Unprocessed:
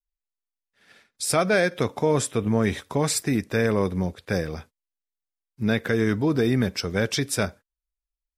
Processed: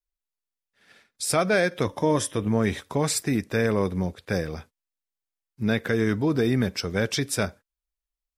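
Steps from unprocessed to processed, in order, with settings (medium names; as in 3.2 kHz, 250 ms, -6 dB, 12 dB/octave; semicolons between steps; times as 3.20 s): 1.85–2.41 s: rippled EQ curve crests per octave 1.2, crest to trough 8 dB; trim -1 dB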